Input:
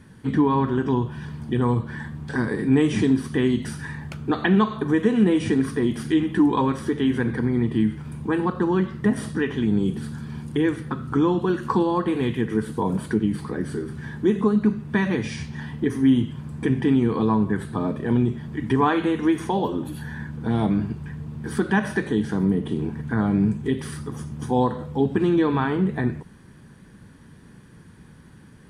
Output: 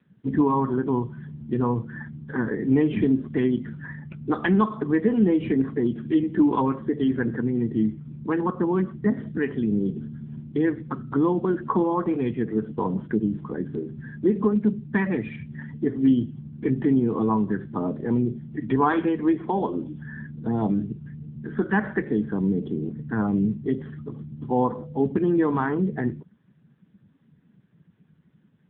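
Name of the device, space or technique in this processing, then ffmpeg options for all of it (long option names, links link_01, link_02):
mobile call with aggressive noise cancelling: -filter_complex "[0:a]asettb=1/sr,asplit=3[link_01][link_02][link_03];[link_01]atrim=end=16.504[link_04];[link_02]atrim=start=16.5:end=16.93,asetpts=PTS-STARTPTS,afade=type=in:duration=0.004:curve=qsin,afade=type=out:start_time=0.426:duration=0.004:curve=qsin,lowpass=frequency=6800:width=0.5412,lowpass=frequency=6800:width=1.3066[link_05];[link_03]atrim=start=16.926[link_06];[link_04][link_05]acrossfade=duration=0.004:curve1=hsin:curve2=qsin[link_07];[link_07][link_06]acrossfade=duration=0.004:curve1=qsin:curve2=hsin,highpass=frequency=150:poles=1,afftdn=noise_reduction=15:noise_floor=-34" -ar 8000 -c:a libopencore_amrnb -b:a 7950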